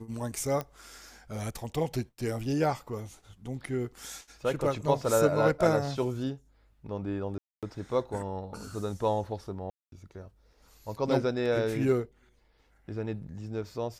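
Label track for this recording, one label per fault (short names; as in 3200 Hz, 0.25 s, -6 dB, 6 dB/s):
0.610000	0.610000	pop -19 dBFS
7.380000	7.630000	gap 0.247 s
9.700000	9.920000	gap 0.222 s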